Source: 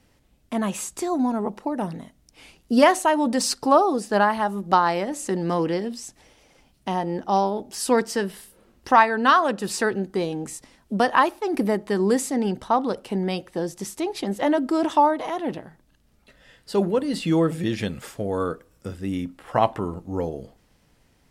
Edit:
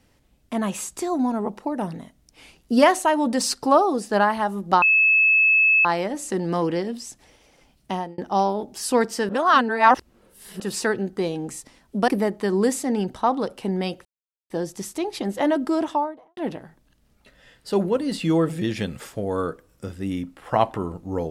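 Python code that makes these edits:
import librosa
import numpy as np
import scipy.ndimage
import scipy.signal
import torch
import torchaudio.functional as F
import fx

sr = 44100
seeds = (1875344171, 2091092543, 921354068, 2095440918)

y = fx.studio_fade_out(x, sr, start_s=14.68, length_s=0.71)
y = fx.edit(y, sr, fx.insert_tone(at_s=4.82, length_s=1.03, hz=2600.0, db=-13.5),
    fx.fade_out_span(start_s=6.89, length_s=0.26),
    fx.reverse_span(start_s=8.26, length_s=1.31),
    fx.cut(start_s=11.05, length_s=0.5),
    fx.insert_silence(at_s=13.52, length_s=0.45), tone=tone)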